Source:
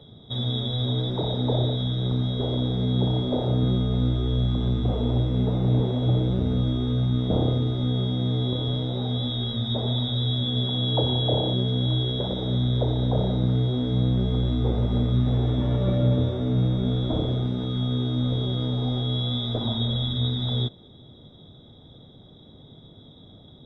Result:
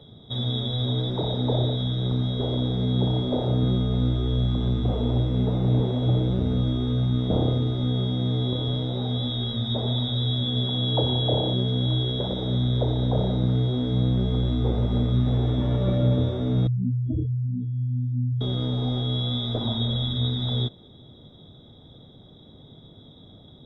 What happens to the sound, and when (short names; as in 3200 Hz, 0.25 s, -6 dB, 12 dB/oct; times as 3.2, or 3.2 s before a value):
16.67–18.41 spectral contrast raised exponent 3.9